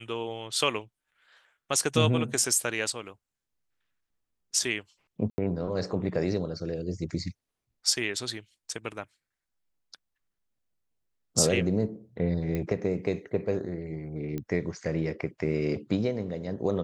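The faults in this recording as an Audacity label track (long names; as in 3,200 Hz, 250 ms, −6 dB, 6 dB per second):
5.300000	5.380000	drop-out 80 ms
12.550000	12.550000	click −19 dBFS
14.380000	14.380000	click −21 dBFS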